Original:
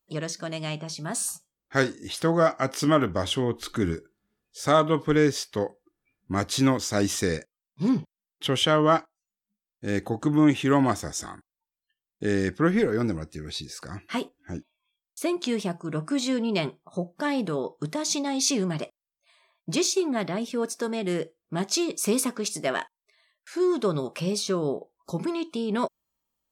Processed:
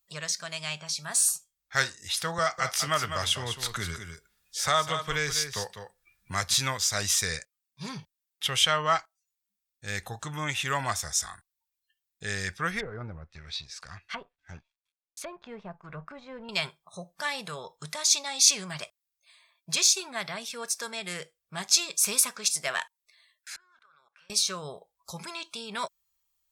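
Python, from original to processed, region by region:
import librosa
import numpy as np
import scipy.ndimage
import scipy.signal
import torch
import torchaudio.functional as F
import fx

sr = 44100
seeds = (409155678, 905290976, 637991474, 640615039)

y = fx.chain(x, sr, fx.echo_single(ms=200, db=-9.5),
    fx.band_squash(depth_pct=40), at=(2.38, 6.54))
y = fx.chain(y, sr, fx.law_mismatch(coded='A'),
    fx.peak_eq(hz=11000.0, db=-7.0, octaves=1.4),
    fx.env_lowpass_down(base_hz=930.0, full_db=-27.0), at=(12.8, 16.49))
y = fx.chain(y, sr, fx.bandpass_q(hz=1500.0, q=5.3),
    fx.level_steps(step_db=20), at=(23.56, 24.3))
y = fx.tone_stack(y, sr, knobs='10-0-10')
y = fx.notch(y, sr, hz=3000.0, q=17.0)
y = F.gain(torch.from_numpy(y), 6.5).numpy()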